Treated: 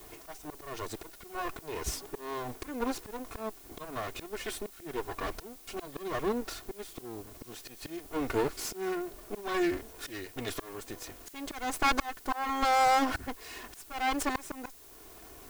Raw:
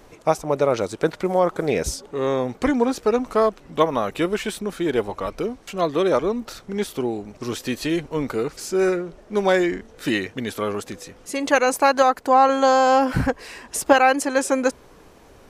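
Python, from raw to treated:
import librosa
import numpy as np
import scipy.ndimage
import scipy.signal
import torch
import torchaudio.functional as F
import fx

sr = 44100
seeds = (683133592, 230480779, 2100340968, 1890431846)

y = fx.lower_of_two(x, sr, delay_ms=2.8)
y = fx.auto_swell(y, sr, attack_ms=493.0)
y = fx.dmg_noise_colour(y, sr, seeds[0], colour='blue', level_db=-52.0)
y = F.gain(torch.from_numpy(y), -2.0).numpy()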